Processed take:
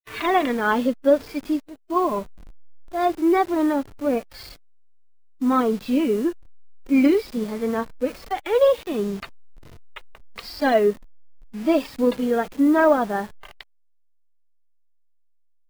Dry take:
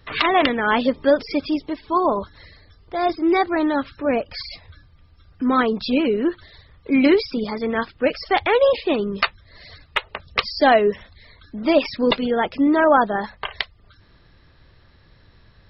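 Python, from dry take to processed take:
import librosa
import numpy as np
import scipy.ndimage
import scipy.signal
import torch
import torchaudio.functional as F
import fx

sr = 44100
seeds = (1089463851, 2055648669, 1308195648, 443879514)

y = fx.delta_hold(x, sr, step_db=-31.5)
y = fx.hpss(y, sr, part='percussive', gain_db=-18)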